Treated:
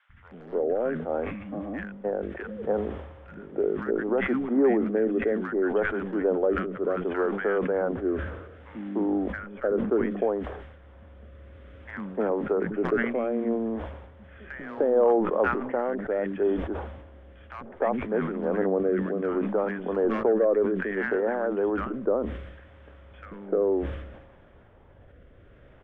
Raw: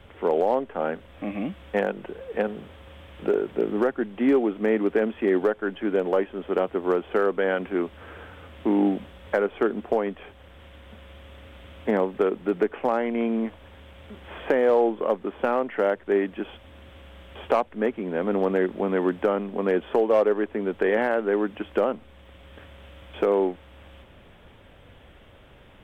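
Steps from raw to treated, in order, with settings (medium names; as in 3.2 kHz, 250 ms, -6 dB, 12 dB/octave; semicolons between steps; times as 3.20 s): resonant high shelf 2.1 kHz -8 dB, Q 1.5; rotary cabinet horn 0.65 Hz; distance through air 110 m; three bands offset in time highs, lows, mids 90/300 ms, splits 210/1300 Hz; decay stretcher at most 54 dB/s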